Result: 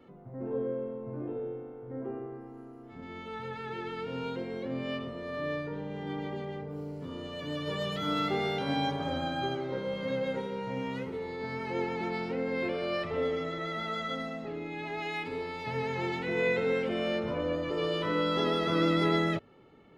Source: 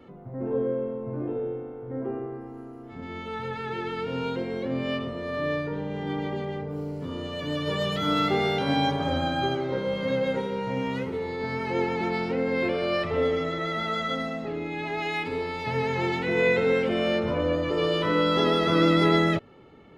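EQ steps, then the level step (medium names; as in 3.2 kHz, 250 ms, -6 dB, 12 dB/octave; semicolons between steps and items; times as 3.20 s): peaking EQ 73 Hz -7 dB 0.47 oct; -6.0 dB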